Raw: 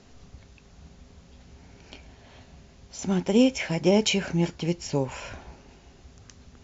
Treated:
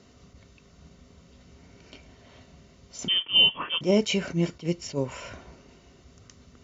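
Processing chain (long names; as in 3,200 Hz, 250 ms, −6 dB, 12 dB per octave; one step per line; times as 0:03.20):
notch comb filter 830 Hz
0:03.08–0:03.81: voice inversion scrambler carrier 3,300 Hz
level that may rise only so fast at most 280 dB per second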